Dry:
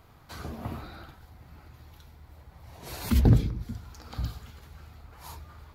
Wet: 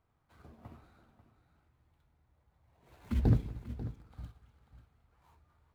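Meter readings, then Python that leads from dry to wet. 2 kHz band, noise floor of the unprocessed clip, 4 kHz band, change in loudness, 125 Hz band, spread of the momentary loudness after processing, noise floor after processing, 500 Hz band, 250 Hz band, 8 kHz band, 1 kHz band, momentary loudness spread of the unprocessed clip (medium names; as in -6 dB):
-13.0 dB, -55 dBFS, under -15 dB, -4.5 dB, -7.5 dB, 22 LU, -75 dBFS, -8.0 dB, -8.0 dB, under -20 dB, -11.5 dB, 24 LU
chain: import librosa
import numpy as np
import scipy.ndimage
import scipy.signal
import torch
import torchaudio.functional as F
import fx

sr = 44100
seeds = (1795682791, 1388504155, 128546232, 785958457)

y = scipy.signal.medfilt(x, 9)
y = fx.echo_multitap(y, sr, ms=(233, 376, 541), db=(-19.0, -18.5, -9.5))
y = fx.upward_expand(y, sr, threshold_db=-43.0, expansion=1.5)
y = y * 10.0 ** (-6.0 / 20.0)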